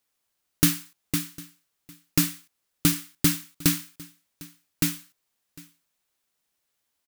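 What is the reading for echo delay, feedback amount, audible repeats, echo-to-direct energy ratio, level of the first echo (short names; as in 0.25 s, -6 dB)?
0.753 s, no steady repeat, 1, -22.0 dB, -22.0 dB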